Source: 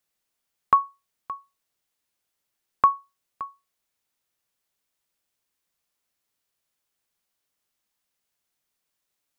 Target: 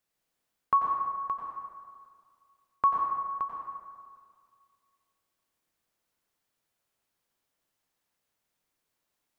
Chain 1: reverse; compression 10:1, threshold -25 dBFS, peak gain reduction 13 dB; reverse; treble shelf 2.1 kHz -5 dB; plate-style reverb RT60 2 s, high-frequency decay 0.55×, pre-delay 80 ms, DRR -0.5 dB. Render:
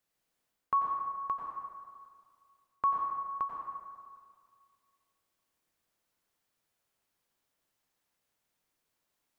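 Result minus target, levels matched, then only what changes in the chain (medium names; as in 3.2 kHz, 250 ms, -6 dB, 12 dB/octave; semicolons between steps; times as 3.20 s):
compression: peak gain reduction +5.5 dB
change: compression 10:1, threshold -19 dBFS, peak gain reduction 8 dB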